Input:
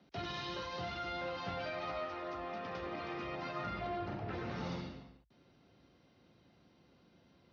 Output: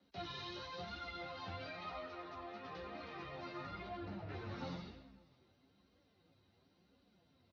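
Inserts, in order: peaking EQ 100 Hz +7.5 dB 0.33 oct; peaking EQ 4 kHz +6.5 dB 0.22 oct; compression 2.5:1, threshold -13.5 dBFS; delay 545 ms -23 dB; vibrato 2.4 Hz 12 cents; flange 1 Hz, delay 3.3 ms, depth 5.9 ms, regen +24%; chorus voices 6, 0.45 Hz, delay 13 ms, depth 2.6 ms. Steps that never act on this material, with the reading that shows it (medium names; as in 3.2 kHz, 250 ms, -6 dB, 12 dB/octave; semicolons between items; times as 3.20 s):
compression, threshold -13.5 dBFS: peak at its input -25.5 dBFS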